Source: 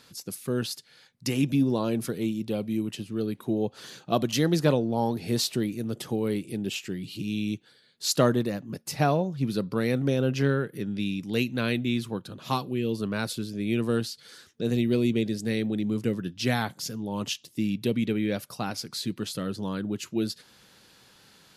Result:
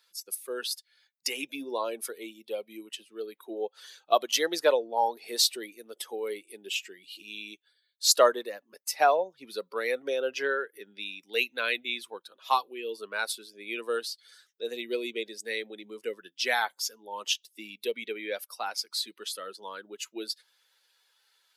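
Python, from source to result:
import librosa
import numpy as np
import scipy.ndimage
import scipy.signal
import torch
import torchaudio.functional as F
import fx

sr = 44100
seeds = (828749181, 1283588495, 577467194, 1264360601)

y = fx.bin_expand(x, sr, power=1.5)
y = scipy.signal.sosfilt(scipy.signal.butter(4, 510.0, 'highpass', fs=sr, output='sos'), y)
y = y * librosa.db_to_amplitude(6.5)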